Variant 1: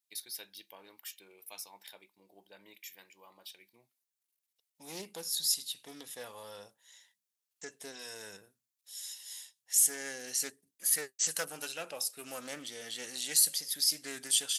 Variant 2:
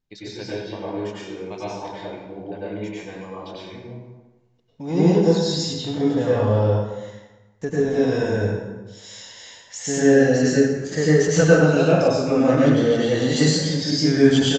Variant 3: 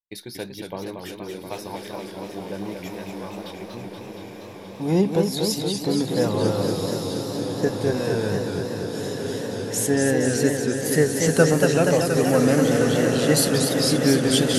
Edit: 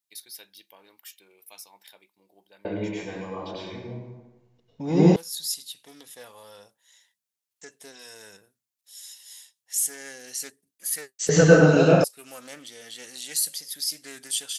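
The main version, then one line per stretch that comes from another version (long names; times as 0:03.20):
1
0:02.65–0:05.16: punch in from 2
0:11.29–0:12.04: punch in from 2
not used: 3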